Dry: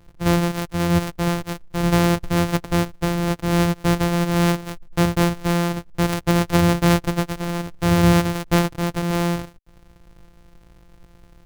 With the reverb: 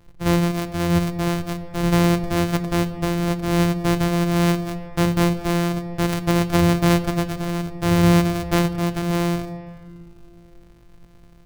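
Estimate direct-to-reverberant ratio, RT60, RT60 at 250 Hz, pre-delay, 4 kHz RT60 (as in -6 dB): 10.0 dB, 2.2 s, 3.2 s, 8 ms, 1.4 s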